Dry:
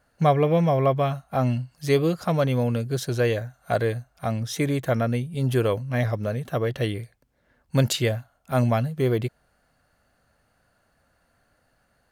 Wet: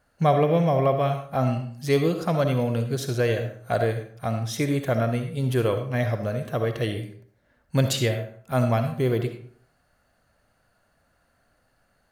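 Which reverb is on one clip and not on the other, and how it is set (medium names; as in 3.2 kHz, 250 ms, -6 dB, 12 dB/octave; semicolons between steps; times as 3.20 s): algorithmic reverb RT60 0.54 s, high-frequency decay 0.65×, pre-delay 25 ms, DRR 6.5 dB; trim -1 dB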